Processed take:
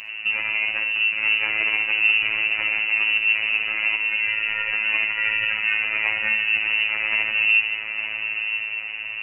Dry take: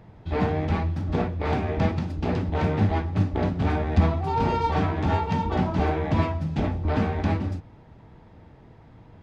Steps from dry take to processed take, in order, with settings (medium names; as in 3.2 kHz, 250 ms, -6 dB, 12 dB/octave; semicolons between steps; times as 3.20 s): frequency inversion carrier 2.8 kHz; compressor with a negative ratio -31 dBFS, ratio -1; echo that smears into a reverb 912 ms, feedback 42%, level -6.5 dB; on a send at -4.5 dB: reverberation RT60 0.45 s, pre-delay 49 ms; on the sum: robot voice 108 Hz; trim +8 dB